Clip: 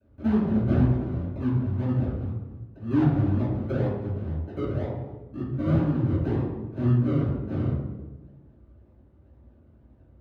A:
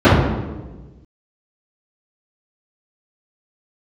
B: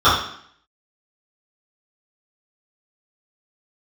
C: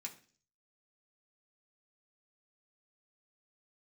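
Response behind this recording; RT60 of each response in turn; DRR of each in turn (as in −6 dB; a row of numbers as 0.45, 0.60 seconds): A; 1.2, 0.60, 0.45 seconds; −16.0, −16.0, −1.0 decibels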